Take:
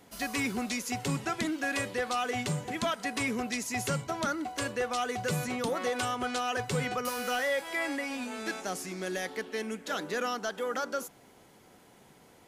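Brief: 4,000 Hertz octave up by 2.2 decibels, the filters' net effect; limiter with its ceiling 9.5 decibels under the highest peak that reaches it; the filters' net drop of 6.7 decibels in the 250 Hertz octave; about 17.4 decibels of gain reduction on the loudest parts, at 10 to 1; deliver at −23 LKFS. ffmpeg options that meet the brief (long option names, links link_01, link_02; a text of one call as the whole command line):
ffmpeg -i in.wav -af "equalizer=frequency=250:width_type=o:gain=-8.5,equalizer=frequency=4000:width_type=o:gain=3,acompressor=threshold=-46dB:ratio=10,volume=28.5dB,alimiter=limit=-13.5dB:level=0:latency=1" out.wav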